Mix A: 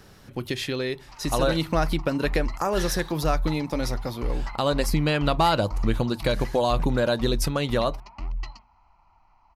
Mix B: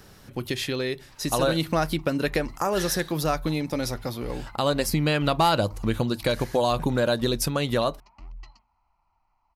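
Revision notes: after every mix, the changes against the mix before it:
background -11.0 dB; master: add high shelf 7800 Hz +5.5 dB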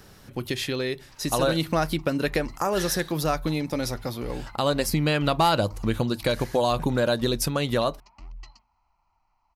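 background: add high shelf 5500 Hz +10.5 dB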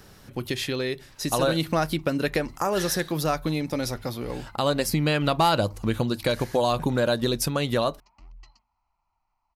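background -6.0 dB

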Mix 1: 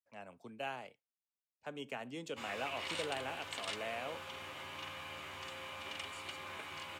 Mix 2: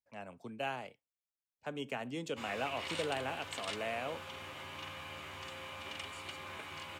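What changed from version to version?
speech +3.0 dB; master: add low shelf 220 Hz +5 dB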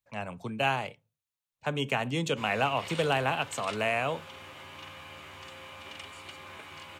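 speech +11.5 dB; reverb: on, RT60 0.35 s

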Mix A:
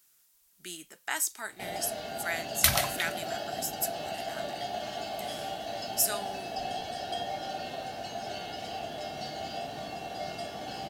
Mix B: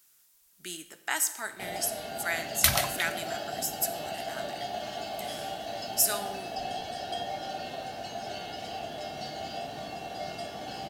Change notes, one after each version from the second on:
reverb: on, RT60 1.0 s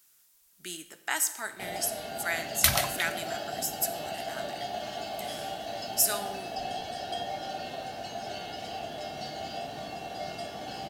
none

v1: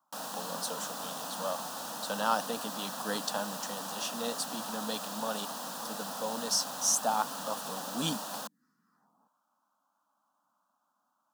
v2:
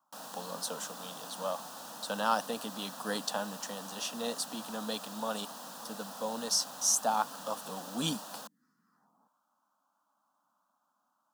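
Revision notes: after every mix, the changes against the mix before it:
background -6.0 dB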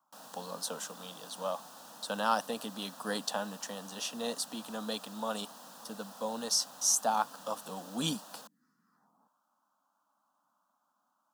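background -5.5 dB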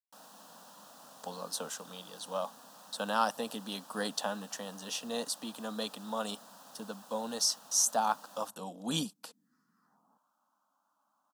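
speech: entry +0.90 s; background -3.5 dB

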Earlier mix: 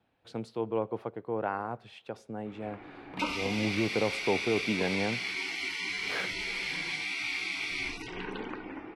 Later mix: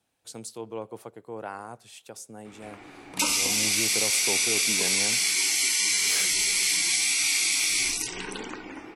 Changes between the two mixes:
speech -6.0 dB; master: remove air absorption 370 m

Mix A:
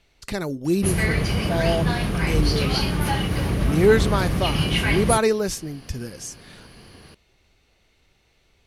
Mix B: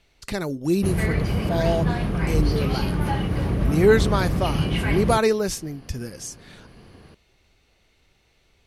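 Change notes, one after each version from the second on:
background: add high shelf 2100 Hz -11.5 dB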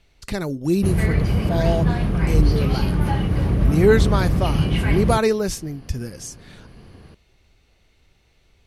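master: add low shelf 170 Hz +6 dB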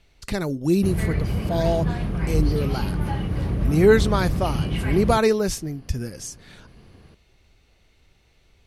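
background -5.0 dB

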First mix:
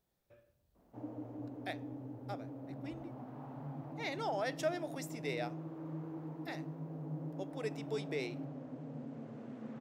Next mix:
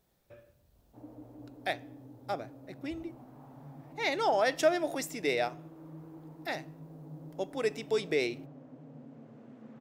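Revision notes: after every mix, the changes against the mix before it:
speech +9.5 dB; background -4.5 dB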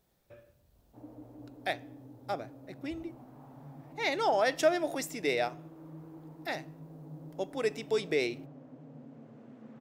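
none

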